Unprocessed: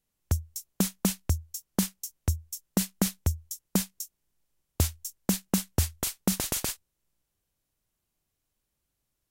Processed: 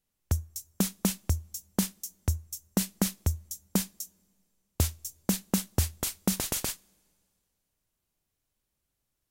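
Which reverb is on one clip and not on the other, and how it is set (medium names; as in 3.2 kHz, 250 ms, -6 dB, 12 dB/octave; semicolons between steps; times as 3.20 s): two-slope reverb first 0.28 s, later 2.3 s, from -22 dB, DRR 18 dB; trim -1 dB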